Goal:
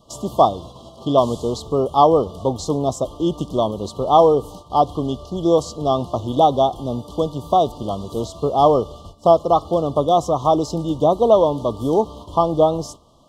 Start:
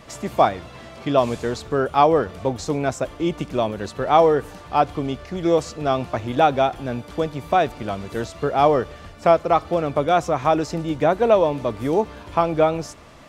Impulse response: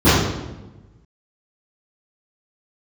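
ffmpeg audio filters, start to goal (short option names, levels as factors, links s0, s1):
-af "agate=range=0.316:threshold=0.0112:ratio=16:detection=peak,asuperstop=centerf=1900:order=20:qfactor=1.1,volume=1.33"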